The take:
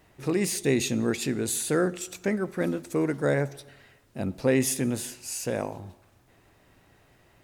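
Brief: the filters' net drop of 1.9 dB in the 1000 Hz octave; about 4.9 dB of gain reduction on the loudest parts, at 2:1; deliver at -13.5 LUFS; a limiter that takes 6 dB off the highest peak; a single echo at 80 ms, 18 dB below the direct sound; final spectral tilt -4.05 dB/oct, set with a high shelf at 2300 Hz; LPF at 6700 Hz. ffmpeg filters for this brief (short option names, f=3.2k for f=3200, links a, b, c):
-af "lowpass=6.7k,equalizer=f=1k:t=o:g=-4,highshelf=f=2.3k:g=4.5,acompressor=threshold=-27dB:ratio=2,alimiter=limit=-22dB:level=0:latency=1,aecho=1:1:80:0.126,volume=19dB"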